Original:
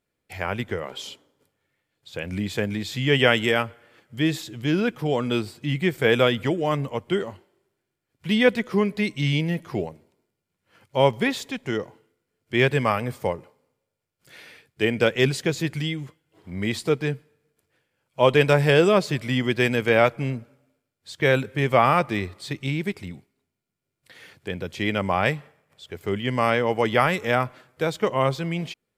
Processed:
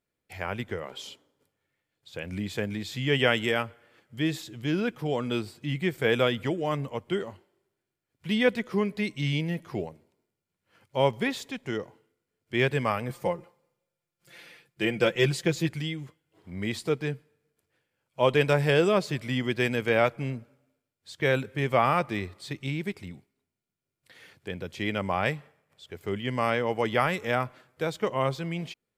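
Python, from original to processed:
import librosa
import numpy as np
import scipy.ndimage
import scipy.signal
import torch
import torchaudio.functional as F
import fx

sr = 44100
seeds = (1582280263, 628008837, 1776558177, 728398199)

y = fx.comb(x, sr, ms=5.8, depth=0.68, at=(13.09, 15.69))
y = y * 10.0 ** (-5.0 / 20.0)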